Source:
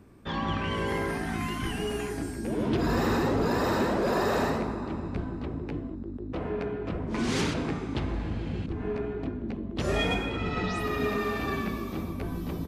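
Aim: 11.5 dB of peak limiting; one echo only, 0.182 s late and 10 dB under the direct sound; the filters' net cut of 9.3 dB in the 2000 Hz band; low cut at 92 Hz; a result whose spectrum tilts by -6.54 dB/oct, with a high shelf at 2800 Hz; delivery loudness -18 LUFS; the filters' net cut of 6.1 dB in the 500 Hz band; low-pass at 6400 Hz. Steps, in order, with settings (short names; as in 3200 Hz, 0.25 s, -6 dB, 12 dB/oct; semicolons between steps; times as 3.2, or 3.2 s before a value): HPF 92 Hz; LPF 6400 Hz; bell 500 Hz -7.5 dB; bell 2000 Hz -8.5 dB; high shelf 2800 Hz -7.5 dB; limiter -30.5 dBFS; echo 0.182 s -10 dB; gain +20.5 dB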